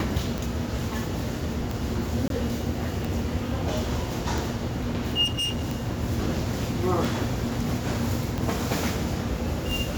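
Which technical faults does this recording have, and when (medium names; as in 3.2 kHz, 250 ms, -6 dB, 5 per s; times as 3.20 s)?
tick 45 rpm
2.28–2.30 s: dropout 22 ms
5.24–5.73 s: clipped -24 dBFS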